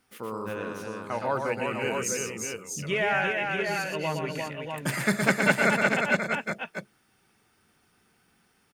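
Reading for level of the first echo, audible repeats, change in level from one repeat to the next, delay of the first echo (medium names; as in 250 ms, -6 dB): -5.0 dB, 3, no regular repeats, 117 ms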